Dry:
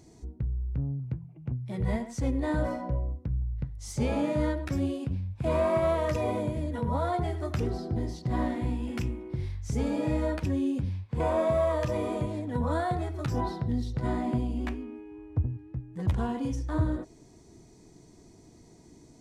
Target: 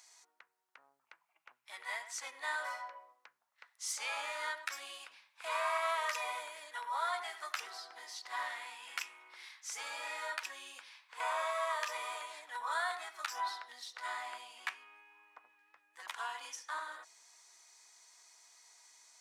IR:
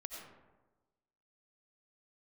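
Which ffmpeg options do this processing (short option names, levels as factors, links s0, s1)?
-af "highpass=f=1100:w=0.5412,highpass=f=1100:w=1.3066,volume=1.58"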